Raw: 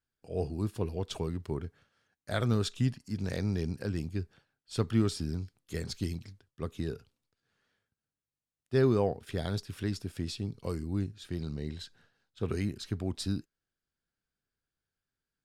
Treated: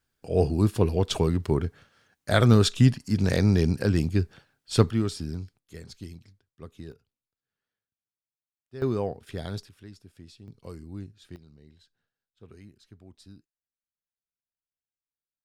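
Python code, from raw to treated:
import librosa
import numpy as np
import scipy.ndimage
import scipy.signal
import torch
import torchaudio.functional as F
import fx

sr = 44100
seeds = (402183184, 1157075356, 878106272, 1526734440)

y = fx.gain(x, sr, db=fx.steps((0.0, 10.5), (4.9, 1.0), (5.58, -7.0), (6.92, -13.5), (8.82, -1.0), (9.69, -13.0), (10.48, -6.5), (11.36, -17.0)))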